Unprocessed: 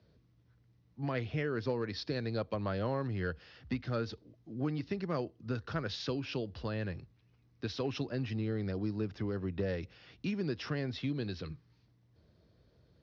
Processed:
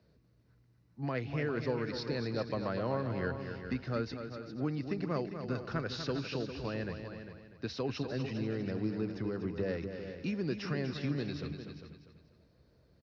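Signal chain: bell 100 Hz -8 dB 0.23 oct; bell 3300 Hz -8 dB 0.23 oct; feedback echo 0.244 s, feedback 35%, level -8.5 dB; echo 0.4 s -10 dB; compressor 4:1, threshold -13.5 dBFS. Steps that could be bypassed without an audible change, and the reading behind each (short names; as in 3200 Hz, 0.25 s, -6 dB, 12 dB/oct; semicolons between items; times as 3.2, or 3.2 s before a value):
compressor, threshold -13.5 dBFS: input peak -20.5 dBFS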